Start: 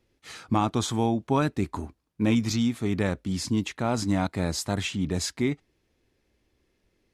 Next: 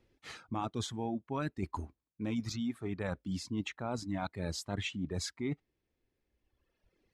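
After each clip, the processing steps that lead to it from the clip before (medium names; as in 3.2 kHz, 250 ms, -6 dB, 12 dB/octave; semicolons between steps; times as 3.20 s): low-pass 3.7 kHz 6 dB/octave; reverb removal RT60 1.7 s; reverse; compression 6:1, threshold -33 dBFS, peak gain reduction 13.5 dB; reverse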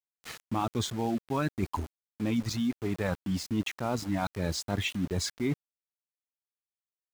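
small samples zeroed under -45.5 dBFS; trim +6 dB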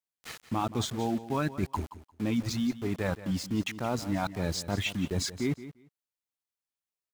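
feedback delay 175 ms, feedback 16%, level -14.5 dB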